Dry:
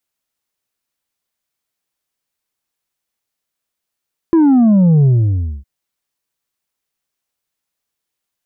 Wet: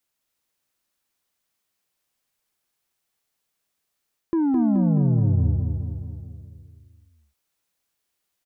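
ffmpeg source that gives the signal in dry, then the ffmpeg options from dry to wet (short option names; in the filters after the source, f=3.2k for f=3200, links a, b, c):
-f lavfi -i "aevalsrc='0.422*clip((1.31-t)/0.59,0,1)*tanh(1.58*sin(2*PI*340*1.31/log(65/340)*(exp(log(65/340)*t/1.31)-1)))/tanh(1.58)':d=1.31:s=44100"
-af "areverse,acompressor=threshold=-20dB:ratio=12,areverse,aecho=1:1:213|426|639|852|1065|1278|1491|1704:0.596|0.345|0.2|0.116|0.0674|0.0391|0.0227|0.0132"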